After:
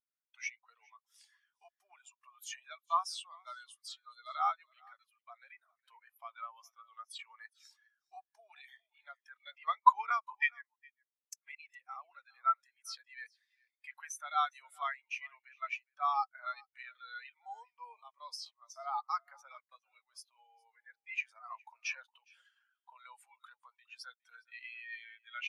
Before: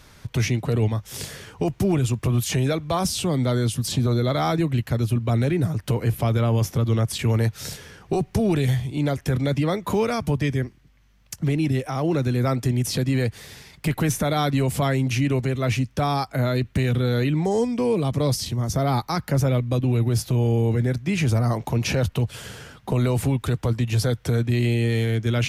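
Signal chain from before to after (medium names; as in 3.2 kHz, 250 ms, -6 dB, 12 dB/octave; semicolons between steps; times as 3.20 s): inverse Chebyshev high-pass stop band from 160 Hz, stop band 80 dB; 9.47–11.62 s: transient shaper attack +8 dB, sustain +1 dB; delay 412 ms -11.5 dB; spectral contrast expander 2.5:1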